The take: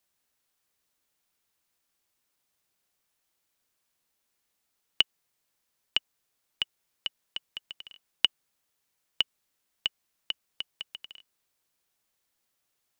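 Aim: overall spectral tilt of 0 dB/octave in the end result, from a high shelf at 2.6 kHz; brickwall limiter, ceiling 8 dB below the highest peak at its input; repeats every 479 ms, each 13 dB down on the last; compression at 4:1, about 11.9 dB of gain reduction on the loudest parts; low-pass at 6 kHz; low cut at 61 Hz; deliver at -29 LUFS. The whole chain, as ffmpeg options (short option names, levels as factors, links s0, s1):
-af "highpass=61,lowpass=6000,highshelf=f=2600:g=3.5,acompressor=threshold=0.0282:ratio=4,alimiter=limit=0.15:level=0:latency=1,aecho=1:1:479|958|1437:0.224|0.0493|0.0108,volume=5.01"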